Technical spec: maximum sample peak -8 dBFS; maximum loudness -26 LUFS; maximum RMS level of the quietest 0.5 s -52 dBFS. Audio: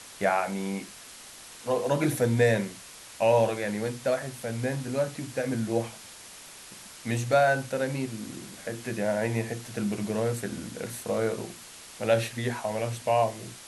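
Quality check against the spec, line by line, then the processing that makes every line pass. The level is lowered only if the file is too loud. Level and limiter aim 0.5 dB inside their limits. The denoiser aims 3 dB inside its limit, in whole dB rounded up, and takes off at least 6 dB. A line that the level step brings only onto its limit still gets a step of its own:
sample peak -10.0 dBFS: OK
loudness -28.5 LUFS: OK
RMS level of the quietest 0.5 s -47 dBFS: fail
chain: denoiser 8 dB, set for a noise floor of -47 dBFS

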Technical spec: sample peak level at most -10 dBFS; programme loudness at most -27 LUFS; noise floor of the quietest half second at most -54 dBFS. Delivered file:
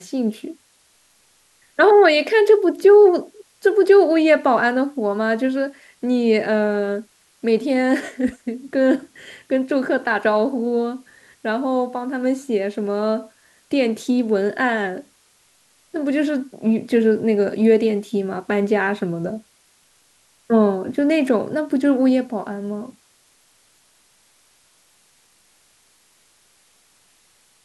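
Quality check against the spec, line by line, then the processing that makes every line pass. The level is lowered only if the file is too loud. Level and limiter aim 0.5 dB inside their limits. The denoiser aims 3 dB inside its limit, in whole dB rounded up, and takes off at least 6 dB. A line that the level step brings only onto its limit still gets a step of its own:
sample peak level -2.5 dBFS: fail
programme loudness -19.0 LUFS: fail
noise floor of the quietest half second -58 dBFS: OK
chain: gain -8.5 dB

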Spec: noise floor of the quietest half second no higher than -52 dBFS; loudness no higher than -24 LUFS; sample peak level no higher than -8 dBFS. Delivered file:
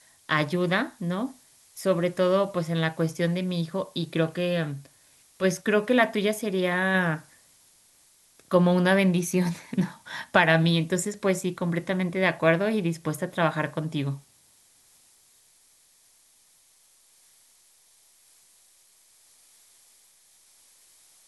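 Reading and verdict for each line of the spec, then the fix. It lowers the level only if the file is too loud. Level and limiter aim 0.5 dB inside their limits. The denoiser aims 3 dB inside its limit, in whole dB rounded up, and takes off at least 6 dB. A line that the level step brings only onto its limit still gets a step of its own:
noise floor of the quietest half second -61 dBFS: OK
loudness -25.5 LUFS: OK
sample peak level -5.0 dBFS: fail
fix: limiter -8.5 dBFS

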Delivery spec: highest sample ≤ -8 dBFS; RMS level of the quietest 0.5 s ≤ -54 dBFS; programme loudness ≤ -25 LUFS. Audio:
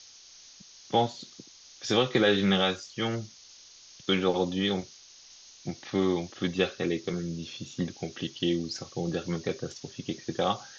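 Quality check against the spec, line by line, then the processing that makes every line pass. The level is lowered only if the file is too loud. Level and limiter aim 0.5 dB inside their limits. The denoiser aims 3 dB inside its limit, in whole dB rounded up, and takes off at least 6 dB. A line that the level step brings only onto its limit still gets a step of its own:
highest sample -11.5 dBFS: OK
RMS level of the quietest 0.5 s -52 dBFS: fail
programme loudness -29.5 LUFS: OK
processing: denoiser 6 dB, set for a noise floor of -52 dBFS

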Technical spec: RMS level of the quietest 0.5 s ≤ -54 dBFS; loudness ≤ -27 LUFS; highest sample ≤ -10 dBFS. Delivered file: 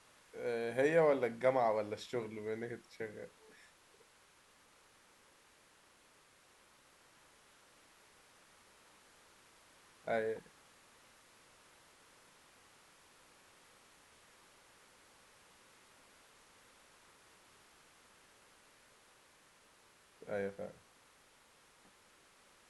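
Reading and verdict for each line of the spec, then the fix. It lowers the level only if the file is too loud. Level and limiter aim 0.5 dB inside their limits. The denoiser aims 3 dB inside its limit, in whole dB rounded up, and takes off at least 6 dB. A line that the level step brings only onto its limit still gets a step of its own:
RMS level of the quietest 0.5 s -67 dBFS: OK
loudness -37.0 LUFS: OK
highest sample -18.0 dBFS: OK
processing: none

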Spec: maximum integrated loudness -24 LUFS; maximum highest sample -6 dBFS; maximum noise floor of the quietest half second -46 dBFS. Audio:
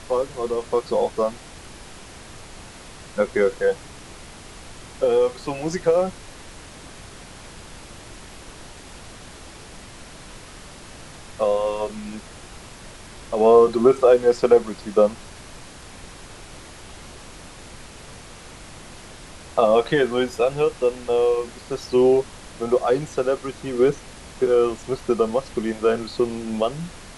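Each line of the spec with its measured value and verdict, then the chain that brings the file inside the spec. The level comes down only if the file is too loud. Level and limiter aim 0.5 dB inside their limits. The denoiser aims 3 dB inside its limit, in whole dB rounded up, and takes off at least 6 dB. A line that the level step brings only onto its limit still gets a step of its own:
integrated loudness -21.0 LUFS: fail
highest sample -3.5 dBFS: fail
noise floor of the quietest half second -41 dBFS: fail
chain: denoiser 6 dB, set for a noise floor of -41 dBFS; gain -3.5 dB

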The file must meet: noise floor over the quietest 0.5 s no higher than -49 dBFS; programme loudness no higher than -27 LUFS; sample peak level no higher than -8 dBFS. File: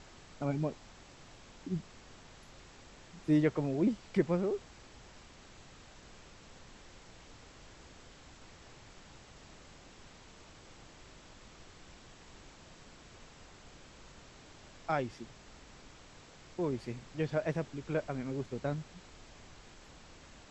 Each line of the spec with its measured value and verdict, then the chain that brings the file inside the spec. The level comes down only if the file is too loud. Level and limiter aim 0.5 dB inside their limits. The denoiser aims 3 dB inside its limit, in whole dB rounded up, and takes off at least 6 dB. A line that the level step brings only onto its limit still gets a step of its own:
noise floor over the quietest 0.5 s -55 dBFS: OK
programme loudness -35.0 LUFS: OK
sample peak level -15.0 dBFS: OK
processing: none

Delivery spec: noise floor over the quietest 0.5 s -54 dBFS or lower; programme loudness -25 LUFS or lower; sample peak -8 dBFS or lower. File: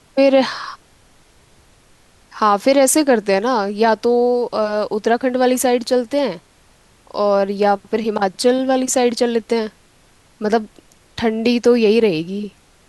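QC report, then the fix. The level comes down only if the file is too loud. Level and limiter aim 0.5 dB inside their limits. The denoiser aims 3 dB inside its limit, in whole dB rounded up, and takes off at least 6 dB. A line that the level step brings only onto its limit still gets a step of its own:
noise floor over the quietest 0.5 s -52 dBFS: fail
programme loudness -17.0 LUFS: fail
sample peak -4.0 dBFS: fail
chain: gain -8.5 dB

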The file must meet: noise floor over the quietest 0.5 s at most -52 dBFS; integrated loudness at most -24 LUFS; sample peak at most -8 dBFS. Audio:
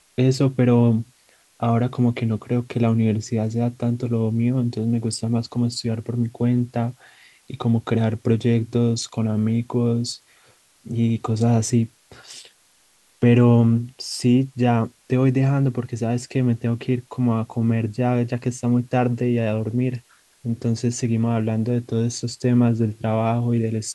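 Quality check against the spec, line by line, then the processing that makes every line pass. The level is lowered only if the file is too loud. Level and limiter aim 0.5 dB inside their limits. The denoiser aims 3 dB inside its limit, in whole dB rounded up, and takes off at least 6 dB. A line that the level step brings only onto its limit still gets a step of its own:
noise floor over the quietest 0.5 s -59 dBFS: OK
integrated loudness -21.5 LUFS: fail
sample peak -6.5 dBFS: fail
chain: gain -3 dB

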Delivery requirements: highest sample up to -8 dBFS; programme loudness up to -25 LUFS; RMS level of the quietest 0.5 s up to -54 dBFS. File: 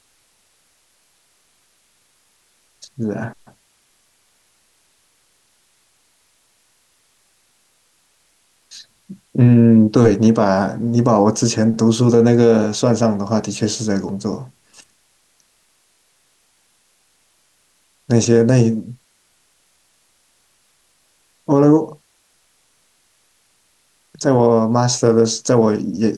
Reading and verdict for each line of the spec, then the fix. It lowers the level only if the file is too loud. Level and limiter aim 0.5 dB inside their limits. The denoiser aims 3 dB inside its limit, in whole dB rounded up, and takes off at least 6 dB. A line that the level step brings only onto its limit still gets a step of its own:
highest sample -2.5 dBFS: fail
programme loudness -15.5 LUFS: fail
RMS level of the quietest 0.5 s -61 dBFS: OK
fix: gain -10 dB

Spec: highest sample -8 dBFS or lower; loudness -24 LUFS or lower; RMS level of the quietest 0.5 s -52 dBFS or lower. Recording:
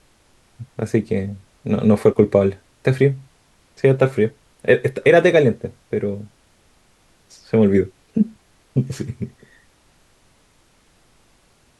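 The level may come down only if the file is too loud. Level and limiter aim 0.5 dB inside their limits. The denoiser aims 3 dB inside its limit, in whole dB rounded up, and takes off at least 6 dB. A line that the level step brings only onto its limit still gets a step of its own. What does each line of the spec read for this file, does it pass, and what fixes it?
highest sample -2.0 dBFS: fail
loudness -19.0 LUFS: fail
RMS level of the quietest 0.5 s -57 dBFS: OK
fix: gain -5.5 dB; limiter -8.5 dBFS

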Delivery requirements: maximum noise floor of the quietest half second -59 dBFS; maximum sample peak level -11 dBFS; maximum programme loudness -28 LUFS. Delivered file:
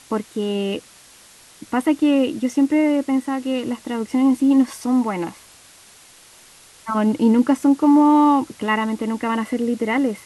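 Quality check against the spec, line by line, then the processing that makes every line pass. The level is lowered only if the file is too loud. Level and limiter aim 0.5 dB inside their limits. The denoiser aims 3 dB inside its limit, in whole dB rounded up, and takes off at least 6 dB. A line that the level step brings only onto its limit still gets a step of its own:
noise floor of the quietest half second -48 dBFS: fail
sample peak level -5.5 dBFS: fail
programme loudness -19.0 LUFS: fail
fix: denoiser 6 dB, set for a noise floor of -48 dBFS; gain -9.5 dB

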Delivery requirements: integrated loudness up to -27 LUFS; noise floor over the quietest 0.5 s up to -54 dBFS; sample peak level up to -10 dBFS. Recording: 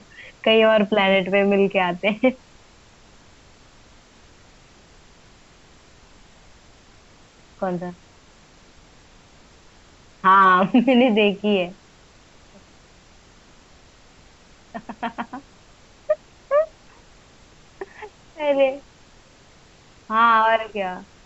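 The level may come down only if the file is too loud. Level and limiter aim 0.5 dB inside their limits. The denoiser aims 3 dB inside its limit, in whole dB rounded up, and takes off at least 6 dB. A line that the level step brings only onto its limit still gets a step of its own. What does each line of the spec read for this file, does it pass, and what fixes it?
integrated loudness -19.5 LUFS: fail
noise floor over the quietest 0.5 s -51 dBFS: fail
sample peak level -6.0 dBFS: fail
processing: gain -8 dB

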